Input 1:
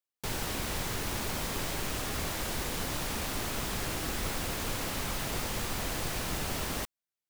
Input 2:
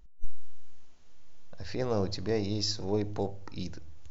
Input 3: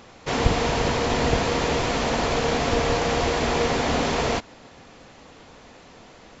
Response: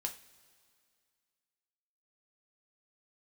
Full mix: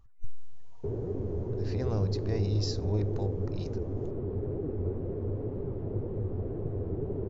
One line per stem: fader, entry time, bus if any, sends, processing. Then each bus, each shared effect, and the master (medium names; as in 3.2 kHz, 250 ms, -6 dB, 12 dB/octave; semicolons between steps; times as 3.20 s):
0.0 dB, 0.60 s, no send, flange 2 Hz, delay 4.7 ms, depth 8.1 ms, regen +43%; resonant low-pass 410 Hz, resonance Q 4.9
-6.0 dB, 0.00 s, no send, none
-17.0 dB, 0.00 s, no send, spectral gate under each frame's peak -10 dB strong; wah-wah 0.65 Hz 470–3000 Hz, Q 6; auto duck -8 dB, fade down 0.20 s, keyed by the second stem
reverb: none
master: peaking EQ 98 Hz +14.5 dB 0.73 oct